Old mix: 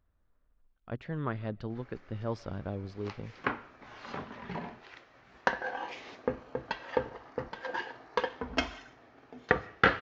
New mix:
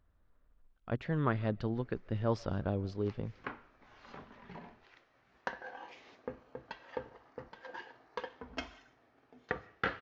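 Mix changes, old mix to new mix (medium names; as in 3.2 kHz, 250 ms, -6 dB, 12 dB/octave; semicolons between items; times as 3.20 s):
speech +3.0 dB; background -10.5 dB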